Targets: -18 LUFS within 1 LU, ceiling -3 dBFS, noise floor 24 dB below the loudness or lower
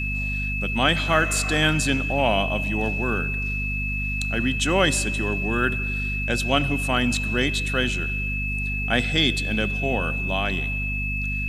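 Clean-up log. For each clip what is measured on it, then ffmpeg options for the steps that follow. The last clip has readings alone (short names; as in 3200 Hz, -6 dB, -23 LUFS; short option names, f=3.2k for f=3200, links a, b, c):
hum 50 Hz; harmonics up to 250 Hz; hum level -26 dBFS; steady tone 2600 Hz; tone level -27 dBFS; loudness -23.0 LUFS; peak -4.0 dBFS; loudness target -18.0 LUFS
-> -af "bandreject=f=50:t=h:w=4,bandreject=f=100:t=h:w=4,bandreject=f=150:t=h:w=4,bandreject=f=200:t=h:w=4,bandreject=f=250:t=h:w=4"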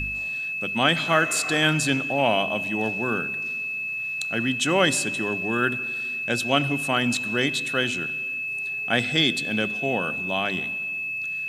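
hum none; steady tone 2600 Hz; tone level -27 dBFS
-> -af "bandreject=f=2.6k:w=30"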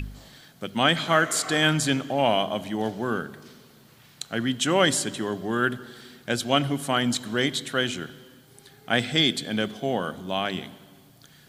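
steady tone none; loudness -25.0 LUFS; peak -5.0 dBFS; loudness target -18.0 LUFS
-> -af "volume=7dB,alimiter=limit=-3dB:level=0:latency=1"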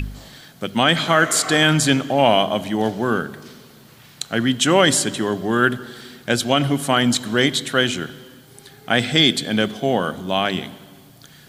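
loudness -18.5 LUFS; peak -3.0 dBFS; noise floor -47 dBFS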